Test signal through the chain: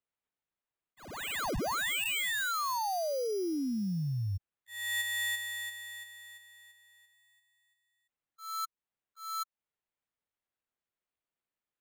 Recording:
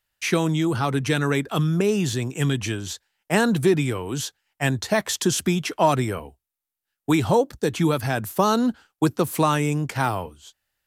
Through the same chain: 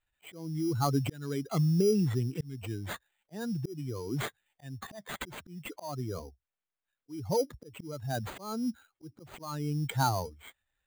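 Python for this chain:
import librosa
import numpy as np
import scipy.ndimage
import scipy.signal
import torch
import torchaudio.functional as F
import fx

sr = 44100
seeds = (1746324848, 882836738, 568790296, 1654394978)

y = fx.spec_expand(x, sr, power=1.9)
y = fx.sample_hold(y, sr, seeds[0], rate_hz=5400.0, jitter_pct=0)
y = fx.auto_swell(y, sr, attack_ms=550.0)
y = F.gain(torch.from_numpy(y), -4.0).numpy()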